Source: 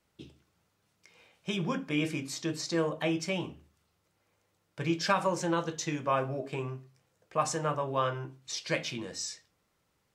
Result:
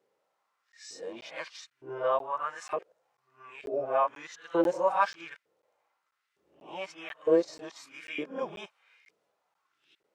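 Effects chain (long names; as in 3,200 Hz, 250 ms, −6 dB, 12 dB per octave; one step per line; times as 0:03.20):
played backwards from end to start
spectral tilt −2.5 dB per octave
auto-filter high-pass saw up 1.1 Hz 390–2,100 Hz
harmonic and percussive parts rebalanced percussive −8 dB
regular buffer underruns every 0.49 s, samples 512, zero, from 0:00.72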